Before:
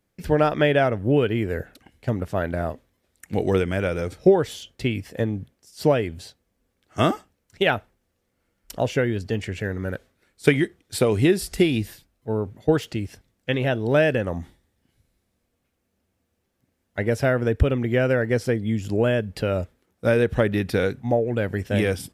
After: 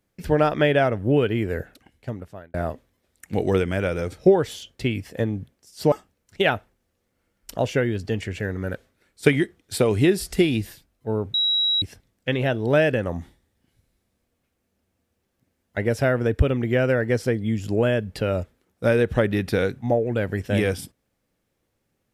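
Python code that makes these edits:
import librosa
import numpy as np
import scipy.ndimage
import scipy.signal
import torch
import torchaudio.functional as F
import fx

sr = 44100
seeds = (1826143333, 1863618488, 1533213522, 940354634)

y = fx.edit(x, sr, fx.fade_out_span(start_s=1.6, length_s=0.94),
    fx.cut(start_s=5.92, length_s=1.21),
    fx.bleep(start_s=12.55, length_s=0.48, hz=3870.0, db=-18.0), tone=tone)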